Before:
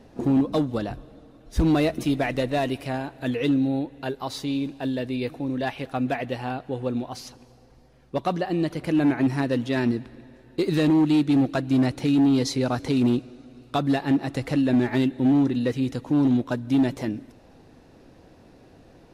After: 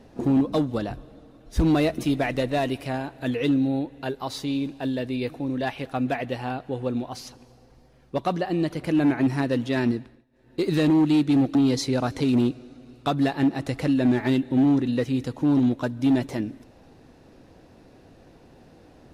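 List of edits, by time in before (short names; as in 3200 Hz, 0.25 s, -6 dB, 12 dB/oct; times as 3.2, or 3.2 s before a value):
9.91–10.65 dip -22 dB, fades 0.34 s
11.55–12.23 cut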